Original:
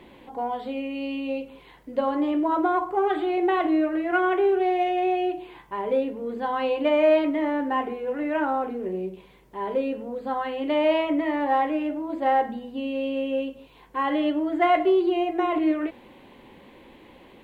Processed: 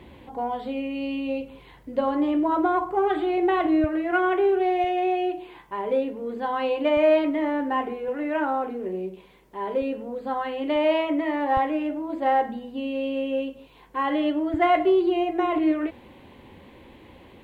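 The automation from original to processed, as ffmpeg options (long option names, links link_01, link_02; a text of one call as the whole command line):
ffmpeg -i in.wav -af "asetnsamples=nb_out_samples=441:pad=0,asendcmd='3.84 equalizer g 5;4.84 equalizer g -5.5;6.97 equalizer g 1;8.08 equalizer g -9;9.82 equalizer g -2;10.76 equalizer g -9;11.57 equalizer g 0.5;14.54 equalizer g 11',equalizer=frequency=83:width_type=o:width=1.2:gain=14.5" out.wav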